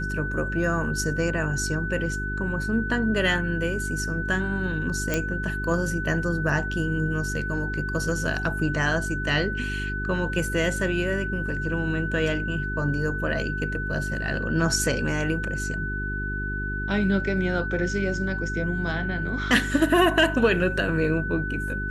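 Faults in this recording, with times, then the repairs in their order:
hum 50 Hz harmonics 8 -31 dBFS
whine 1.5 kHz -30 dBFS
5.14 s: pop -9 dBFS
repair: de-click; de-hum 50 Hz, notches 8; band-stop 1.5 kHz, Q 30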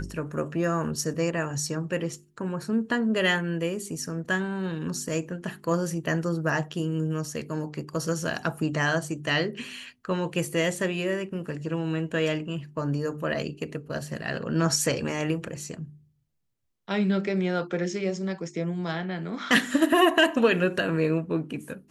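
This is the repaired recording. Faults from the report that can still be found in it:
nothing left

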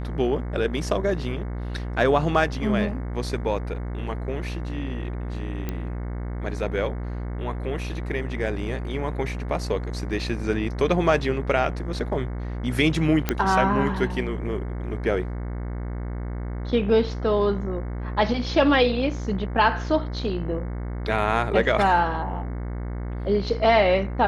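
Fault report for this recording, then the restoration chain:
buzz 60 Hz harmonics 37 -30 dBFS
5.69 s: pop -15 dBFS
13.29 s: pop -7 dBFS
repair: de-click; de-hum 60 Hz, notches 37

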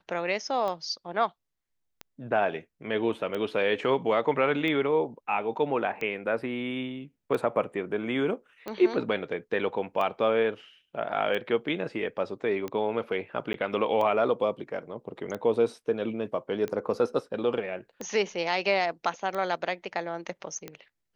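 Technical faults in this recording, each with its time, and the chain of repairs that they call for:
tick 45 rpm -21 dBFS
13.53–13.54 s: dropout 12 ms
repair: de-click; interpolate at 13.53 s, 12 ms

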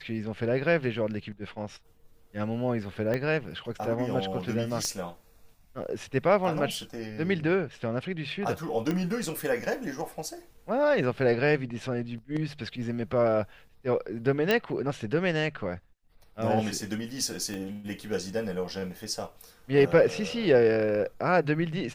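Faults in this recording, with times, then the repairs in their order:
3.14 s: pop -17 dBFS
4.85 s: pop -19 dBFS
8.91 s: pop -17 dBFS
14.51 s: pop -11 dBFS
17.54 s: pop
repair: de-click

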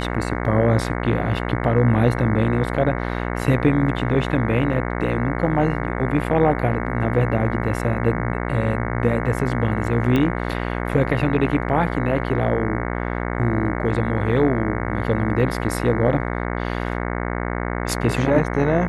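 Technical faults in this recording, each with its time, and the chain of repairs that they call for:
buzz 60 Hz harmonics 37 -25 dBFS
10.16 s: pop -10 dBFS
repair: de-click; de-hum 60 Hz, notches 37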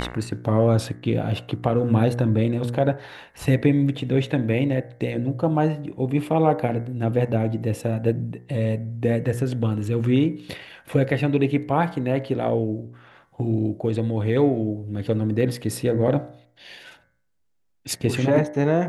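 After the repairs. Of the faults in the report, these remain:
nothing left

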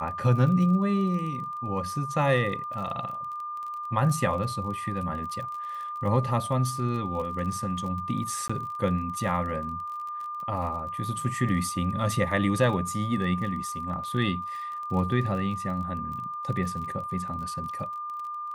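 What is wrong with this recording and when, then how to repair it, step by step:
crackle 27 per s -35 dBFS
whine 1.2 kHz -32 dBFS
8.48–8.49 s: dropout 15 ms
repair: de-click; band-stop 1.2 kHz, Q 30; interpolate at 8.48 s, 15 ms

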